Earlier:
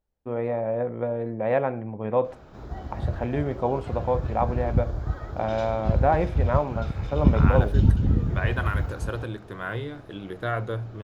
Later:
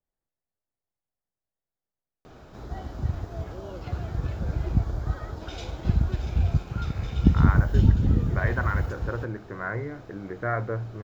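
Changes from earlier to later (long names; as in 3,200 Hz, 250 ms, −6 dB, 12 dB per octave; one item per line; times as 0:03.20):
first voice: muted
second voice: add Butterworth low-pass 2,200 Hz 96 dB per octave
master: add high-shelf EQ 4,100 Hz +7 dB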